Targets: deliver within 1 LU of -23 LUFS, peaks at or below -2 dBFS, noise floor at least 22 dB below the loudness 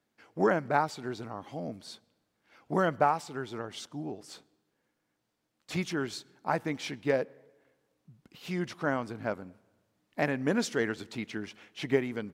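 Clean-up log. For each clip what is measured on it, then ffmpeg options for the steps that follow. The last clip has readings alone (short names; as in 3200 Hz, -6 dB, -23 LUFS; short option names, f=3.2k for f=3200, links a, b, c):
loudness -32.5 LUFS; peak -10.5 dBFS; loudness target -23.0 LUFS
-> -af "volume=9.5dB,alimiter=limit=-2dB:level=0:latency=1"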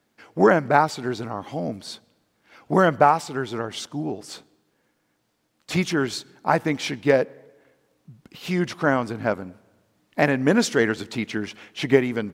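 loudness -23.0 LUFS; peak -2.0 dBFS; noise floor -70 dBFS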